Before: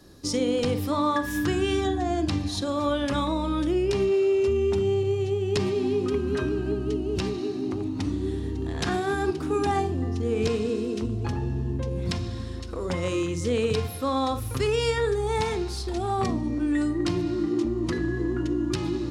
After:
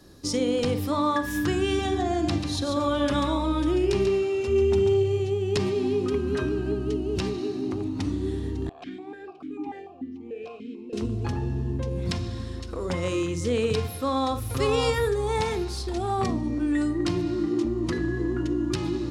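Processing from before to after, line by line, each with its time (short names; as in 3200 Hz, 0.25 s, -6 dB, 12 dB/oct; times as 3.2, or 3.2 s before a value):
1.65–5.2 echo 0.14 s -6 dB
8.69–10.93 vowel sequencer 6.8 Hz
13.93–14.52 echo throw 0.56 s, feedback 20%, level -4 dB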